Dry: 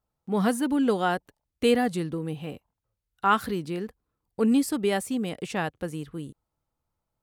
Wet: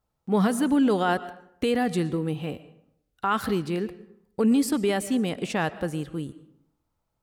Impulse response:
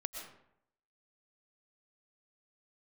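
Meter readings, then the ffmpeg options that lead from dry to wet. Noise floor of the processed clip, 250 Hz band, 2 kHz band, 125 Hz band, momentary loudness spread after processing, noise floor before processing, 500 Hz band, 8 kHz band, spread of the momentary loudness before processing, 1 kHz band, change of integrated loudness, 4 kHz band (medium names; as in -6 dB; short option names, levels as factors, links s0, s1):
-78 dBFS, +2.0 dB, +0.5 dB, +3.5 dB, 13 LU, -84 dBFS, +0.5 dB, +1.5 dB, 16 LU, -0.5 dB, +1.0 dB, +0.5 dB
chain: -filter_complex "[0:a]alimiter=limit=0.119:level=0:latency=1:release=35,asplit=2[s0][s1];[1:a]atrim=start_sample=2205,lowpass=8800[s2];[s1][s2]afir=irnorm=-1:irlink=0,volume=0.376[s3];[s0][s3]amix=inputs=2:normalize=0,volume=1.19"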